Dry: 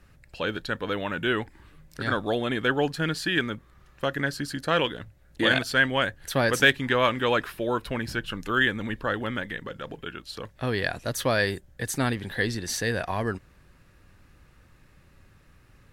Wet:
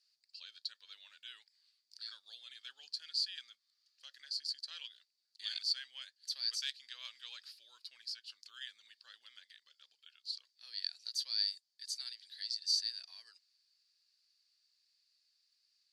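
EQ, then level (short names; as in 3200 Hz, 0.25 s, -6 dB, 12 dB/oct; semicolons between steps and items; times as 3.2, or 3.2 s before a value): ladder band-pass 4800 Hz, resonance 85%; 0.0 dB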